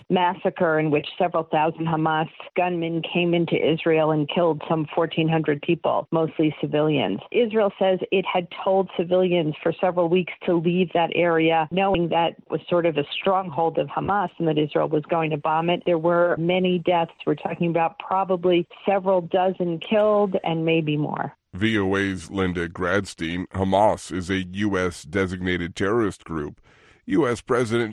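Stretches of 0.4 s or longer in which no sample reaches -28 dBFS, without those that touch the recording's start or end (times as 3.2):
26.48–27.08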